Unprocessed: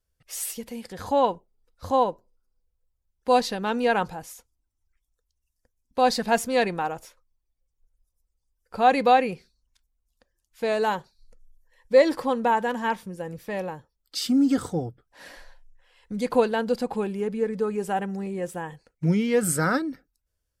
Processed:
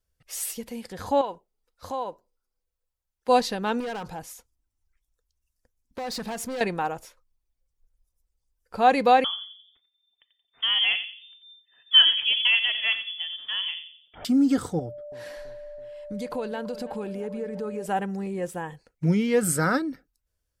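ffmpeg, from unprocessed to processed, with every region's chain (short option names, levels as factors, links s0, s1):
-filter_complex "[0:a]asettb=1/sr,asplit=3[s0][s1][s2];[s0]atrim=end=1.214[s3];[s1]atrim=start=1.21:end=3.29,asetpts=PTS-STARTPTS,afade=t=in:d=0.004:c=qsin,afade=t=out:st=2.076:d=0.004:c=qsin,lowshelf=f=290:g=-11,acompressor=threshold=0.0355:ratio=2.5:attack=3.2:release=140:knee=1:detection=peak[s4];[s2]atrim=start=3.286[s5];[s3][s4]acrossfade=d=0.004:c1=hsin:c2=qsin[s6];[s6][s5]acrossfade=d=0.004:c1=qsin:c2=hsin,asettb=1/sr,asplit=3[s7][s8][s9];[s7]atrim=end=3.804[s10];[s8]atrim=start=3.8:end=6.61,asetpts=PTS-STARTPTS,afade=t=in:d=0.004:c=qsin,afade=t=out:st=2.806:d=0.004:c=qsin,acompressor=threshold=0.0562:ratio=6:attack=3.2:release=140:knee=1:detection=peak,volume=28.2,asoftclip=hard,volume=0.0355[s11];[s9]atrim=start=6.606[s12];[s10][s11]acrossfade=d=0.004:c1=hsin:c2=qsin[s13];[s13][s12]acrossfade=d=0.004:c1=qsin:c2=hsin,asettb=1/sr,asplit=3[s14][s15][s16];[s14]atrim=end=9.244[s17];[s15]atrim=start=9.24:end=14.25,asetpts=PTS-STARTPTS,afade=t=in:d=0.004:c=qsin,afade=t=out:st=5.006:d=0.004:c=qsin,asplit=2[s18][s19];[s19]adelay=88,lowpass=f=1000:p=1,volume=0.447,asplit=2[s20][s21];[s21]adelay=88,lowpass=f=1000:p=1,volume=0.46,asplit=2[s22][s23];[s23]adelay=88,lowpass=f=1000:p=1,volume=0.46,asplit=2[s24][s25];[s25]adelay=88,lowpass=f=1000:p=1,volume=0.46,asplit=2[s26][s27];[s27]adelay=88,lowpass=f=1000:p=1,volume=0.46[s28];[s18][s20][s22][s24][s26][s28]amix=inputs=6:normalize=0,atrim=end_sample=220941,lowpass=f=3100:t=q:w=0.5098,lowpass=f=3100:t=q:w=0.6013,lowpass=f=3100:t=q:w=0.9,lowpass=f=3100:t=q:w=2.563,afreqshift=-3600[s29];[s16]atrim=start=14.246[s30];[s17][s29]acrossfade=d=0.004:c1=hsin:c2=qsin[s31];[s31][s30]acrossfade=d=0.004:c1=qsin:c2=hsin,asettb=1/sr,asplit=3[s32][s33][s34];[s32]atrim=end=14.794[s35];[s33]atrim=start=14.79:end=17.86,asetpts=PTS-STARTPTS,afade=t=in:d=0.004:c=qsin,afade=t=out:st=3.066:d=0.004:c=qsin,acompressor=threshold=0.0251:ratio=2.5:attack=3.2:release=140:knee=1:detection=peak,aeval=exprs='val(0)+0.0141*sin(2*PI*590*n/s)':c=same,asplit=2[s36][s37];[s37]adelay=330,lowpass=f=2800:p=1,volume=0.178,asplit=2[s38][s39];[s39]adelay=330,lowpass=f=2800:p=1,volume=0.54,asplit=2[s40][s41];[s41]adelay=330,lowpass=f=2800:p=1,volume=0.54,asplit=2[s42][s43];[s43]adelay=330,lowpass=f=2800:p=1,volume=0.54,asplit=2[s44][s45];[s45]adelay=330,lowpass=f=2800:p=1,volume=0.54[s46];[s36][s38][s40][s42][s44][s46]amix=inputs=6:normalize=0,atrim=end_sample=135387[s47];[s34]atrim=start=17.856[s48];[s35][s47]acrossfade=d=0.004:c1=hsin:c2=qsin[s49];[s49][s48]acrossfade=d=0.004:c1=qsin:c2=hsin"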